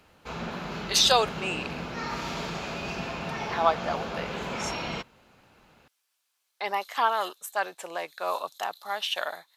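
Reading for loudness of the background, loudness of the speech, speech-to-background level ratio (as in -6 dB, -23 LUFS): -34.0 LUFS, -27.5 LUFS, 6.5 dB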